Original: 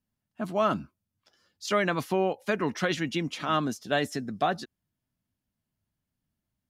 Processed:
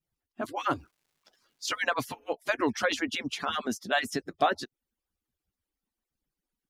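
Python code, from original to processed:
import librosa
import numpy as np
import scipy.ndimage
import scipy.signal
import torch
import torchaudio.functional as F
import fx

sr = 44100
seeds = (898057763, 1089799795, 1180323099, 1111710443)

y = fx.hpss_only(x, sr, part='percussive')
y = fx.dmg_crackle(y, sr, seeds[0], per_s=510.0, level_db=-65.0, at=(0.67, 1.78), fade=0.02)
y = y * librosa.db_to_amplitude(2.5)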